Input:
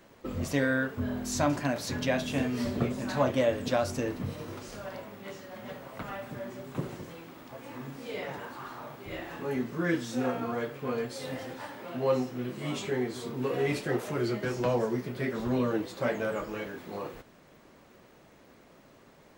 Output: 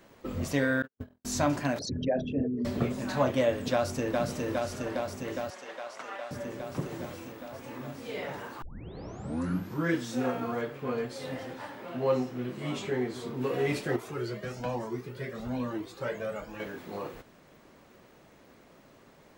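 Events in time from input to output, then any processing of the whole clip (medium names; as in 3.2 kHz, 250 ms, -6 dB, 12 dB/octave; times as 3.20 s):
0.82–1.25 s: gate -29 dBFS, range -57 dB
1.79–2.65 s: resonances exaggerated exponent 3
3.72–4.19 s: echo throw 410 ms, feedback 80%, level -2.5 dB
5.50–6.31 s: band-pass 620–7800 Hz
6.88–7.32 s: doubling 33 ms -5 dB
8.62 s: tape start 1.29 s
10.61–13.41 s: treble shelf 5.3 kHz -5.5 dB
13.96–16.60 s: Shepard-style flanger rising 1.1 Hz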